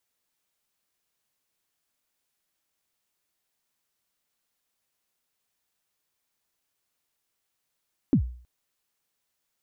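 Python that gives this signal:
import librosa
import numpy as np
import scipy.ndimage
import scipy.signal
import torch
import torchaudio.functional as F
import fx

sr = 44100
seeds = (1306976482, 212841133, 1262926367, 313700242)

y = fx.drum_kick(sr, seeds[0], length_s=0.32, level_db=-13.5, start_hz=320.0, end_hz=61.0, sweep_ms=90.0, decay_s=0.48, click=False)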